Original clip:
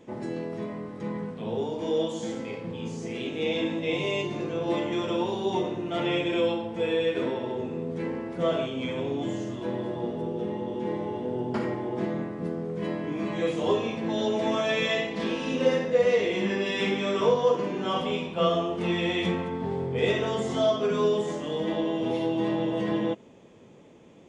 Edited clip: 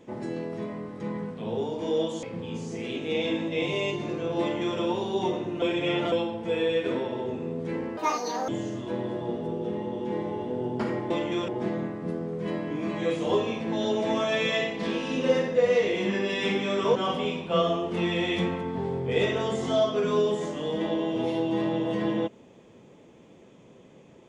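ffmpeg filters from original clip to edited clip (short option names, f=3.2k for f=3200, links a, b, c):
-filter_complex "[0:a]asplit=9[a][b][c][d][e][f][g][h][i];[a]atrim=end=2.232[j];[b]atrim=start=2.538:end=5.932[k];[c]atrim=start=5.928:end=6.432,asetpts=PTS-STARTPTS,areverse[l];[d]atrim=start=6.428:end=8.284[m];[e]atrim=start=8.28:end=9.23,asetpts=PTS-STARTPTS,asetrate=81585,aresample=44100[n];[f]atrim=start=9.226:end=11.852[o];[g]atrim=start=4.708:end=5.092[p];[h]atrim=start=11.848:end=17.322[q];[i]atrim=start=17.818[r];[j][k]acrossfade=d=0.004:c1=hsin:c2=hsin[s];[s][l]acrossfade=d=0.004:c1=hsin:c2=hsin[t];[t][m]acrossfade=d=0.004:c1=hsin:c2=hsin[u];[u][n]acrossfade=d=0.004:c1=hsin:c2=hsin[v];[v][o]acrossfade=d=0.004:c1=hsin:c2=hsin[w];[w][p]acrossfade=d=0.004:c1=hsin:c2=hsin[x];[x][q]acrossfade=d=0.004:c1=hsin:c2=hsin[y];[y][r]acrossfade=d=0.004:c1=hsin:c2=hsin"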